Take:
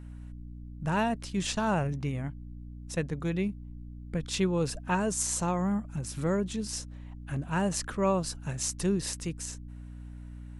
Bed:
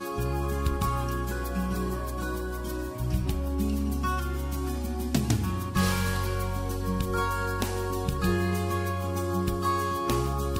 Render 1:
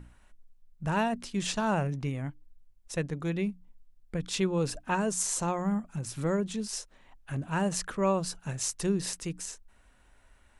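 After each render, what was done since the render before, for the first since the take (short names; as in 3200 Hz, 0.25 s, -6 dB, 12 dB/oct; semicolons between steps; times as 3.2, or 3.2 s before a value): notches 60/120/180/240/300 Hz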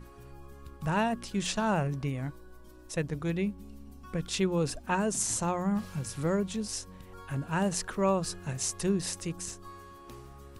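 add bed -21 dB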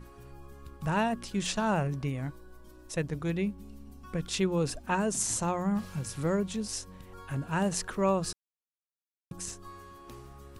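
8.33–9.31 mute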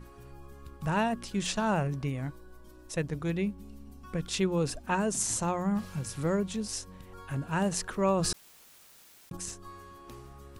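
8.14–9.37 sustainer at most 24 dB/s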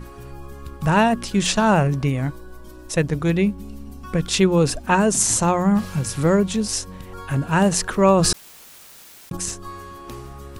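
gain +11.5 dB; limiter -3 dBFS, peak gain reduction 1 dB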